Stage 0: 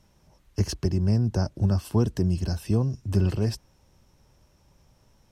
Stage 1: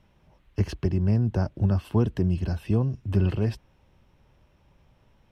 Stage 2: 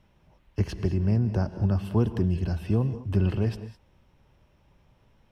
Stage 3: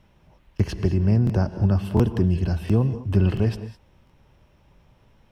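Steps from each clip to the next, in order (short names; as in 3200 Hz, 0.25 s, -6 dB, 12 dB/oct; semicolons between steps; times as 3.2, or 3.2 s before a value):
resonant high shelf 4200 Hz -10.5 dB, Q 1.5
non-linear reverb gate 0.23 s rising, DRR 11.5 dB; gain -1 dB
crackling interface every 0.70 s, samples 1024, repeat, from 0.55; gain +4.5 dB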